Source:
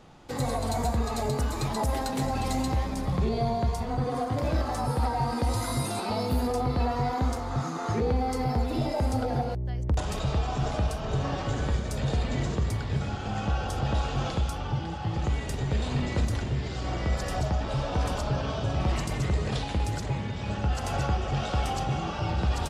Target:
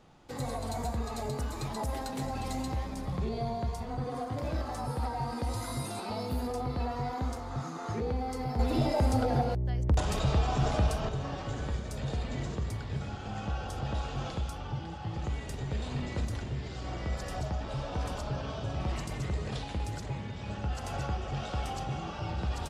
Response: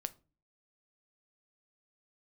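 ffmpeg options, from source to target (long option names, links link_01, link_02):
-filter_complex "[0:a]asettb=1/sr,asplit=3[link_01][link_02][link_03];[link_01]atrim=end=8.594[link_04];[link_02]atrim=start=8.59:end=11.09,asetpts=PTS-STARTPTS,afade=type=in:duration=0.004:curve=qsin,afade=type=out:start_time=2.496:duration=0.004:curve=qsin,acontrast=79[link_05];[link_03]atrim=start=11.086[link_06];[link_04][link_05]acrossfade=duration=0.004:curve1=hsin:curve2=qsin[link_07];[link_07][link_06]acrossfade=duration=0.004:curve1=qsin:curve2=hsin,volume=-6.5dB"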